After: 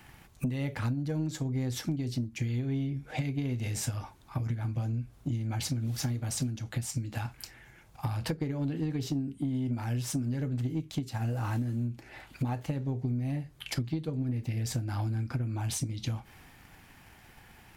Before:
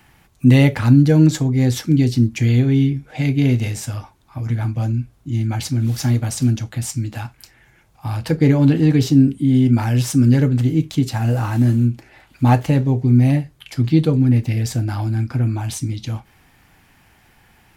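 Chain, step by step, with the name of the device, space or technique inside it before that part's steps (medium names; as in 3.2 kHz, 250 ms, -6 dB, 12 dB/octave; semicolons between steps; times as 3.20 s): drum-bus smash (transient shaper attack +8 dB, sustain +2 dB; compression 10:1, threshold -25 dBFS, peak gain reduction 24 dB; saturation -19 dBFS, distortion -20 dB); trim -2.5 dB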